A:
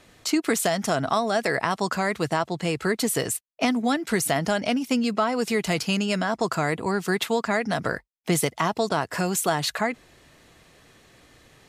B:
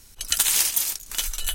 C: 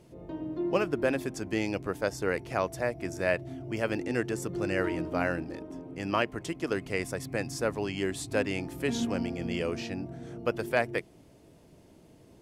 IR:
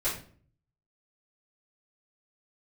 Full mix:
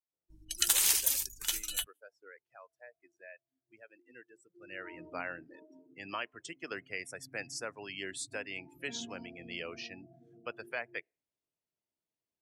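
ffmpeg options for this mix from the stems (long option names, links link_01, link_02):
-filter_complex "[1:a]aeval=exprs='val(0)+0.00355*(sin(2*PI*50*n/s)+sin(2*PI*2*50*n/s)/2+sin(2*PI*3*50*n/s)/3+sin(2*PI*4*50*n/s)/4+sin(2*PI*5*50*n/s)/5)':channel_layout=same,adelay=300,volume=-6dB[link_01];[2:a]alimiter=limit=-17dB:level=0:latency=1:release=339,tiltshelf=frequency=750:gain=-8.5,volume=-8.5dB,afade=type=in:start_time=4.55:duration=0.54:silence=0.266073[link_02];[link_01][link_02]amix=inputs=2:normalize=0,acrossover=split=170|3000[link_03][link_04][link_05];[link_03]acompressor=threshold=-53dB:ratio=3[link_06];[link_06][link_04][link_05]amix=inputs=3:normalize=0,afftdn=noise_reduction=30:noise_floor=-46"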